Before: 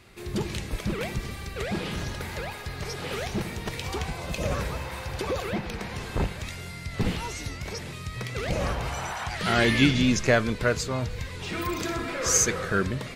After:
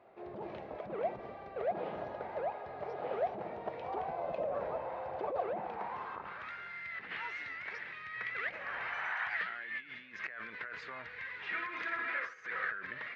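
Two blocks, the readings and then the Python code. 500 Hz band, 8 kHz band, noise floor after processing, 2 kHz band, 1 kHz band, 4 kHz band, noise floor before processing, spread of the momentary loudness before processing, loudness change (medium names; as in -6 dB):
-8.0 dB, under -40 dB, -49 dBFS, -6.5 dB, -5.5 dB, -20.5 dB, -39 dBFS, 13 LU, -11.0 dB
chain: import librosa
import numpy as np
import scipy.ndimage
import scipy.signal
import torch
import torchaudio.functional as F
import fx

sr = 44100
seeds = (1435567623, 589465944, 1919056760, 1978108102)

y = fx.low_shelf(x, sr, hz=91.0, db=-6.0)
y = fx.over_compress(y, sr, threshold_db=-31.0, ratio=-1.0)
y = fx.filter_sweep_bandpass(y, sr, from_hz=670.0, to_hz=1800.0, start_s=5.48, end_s=6.83, q=3.4)
y = fx.air_absorb(y, sr, metres=250.0)
y = F.gain(torch.from_numpy(y), 4.0).numpy()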